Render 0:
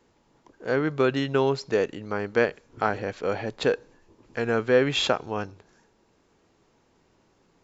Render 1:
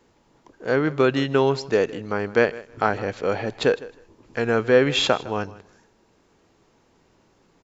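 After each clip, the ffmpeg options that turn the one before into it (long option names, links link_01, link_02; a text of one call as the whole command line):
ffmpeg -i in.wav -af "aecho=1:1:157|314:0.112|0.0202,volume=3.5dB" out.wav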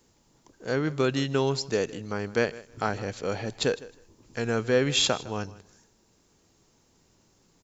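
ffmpeg -i in.wav -af "bass=frequency=250:gain=6,treble=frequency=4000:gain=15,volume=-7.5dB" out.wav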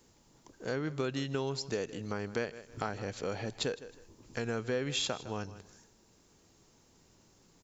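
ffmpeg -i in.wav -af "acompressor=threshold=-35dB:ratio=2.5" out.wav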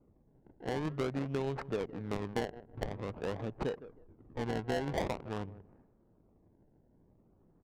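ffmpeg -i in.wav -af "acrusher=samples=25:mix=1:aa=0.000001:lfo=1:lforange=25:lforate=0.48,adynamicsmooth=sensitivity=4:basefreq=580" out.wav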